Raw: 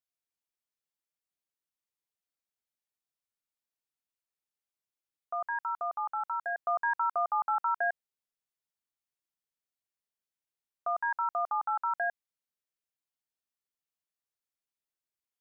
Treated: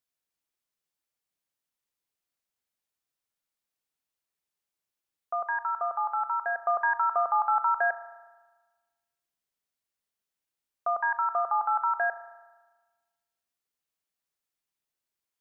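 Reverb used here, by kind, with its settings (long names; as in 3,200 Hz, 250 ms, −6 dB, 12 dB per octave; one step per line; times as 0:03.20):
spring reverb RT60 1.3 s, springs 36 ms, chirp 30 ms, DRR 12 dB
level +4 dB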